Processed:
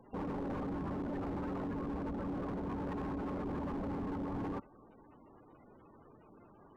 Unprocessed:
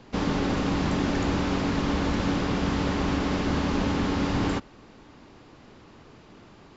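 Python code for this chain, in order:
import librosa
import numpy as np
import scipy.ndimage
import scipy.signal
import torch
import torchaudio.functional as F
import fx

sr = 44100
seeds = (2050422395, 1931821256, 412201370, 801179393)

y = fx.spec_gate(x, sr, threshold_db=-15, keep='strong')
y = fx.low_shelf(y, sr, hz=290.0, db=-7.5)
y = np.clip(y, -10.0 ** (-31.0 / 20.0), 10.0 ** (-31.0 / 20.0))
y = F.gain(torch.from_numpy(y), -4.5).numpy()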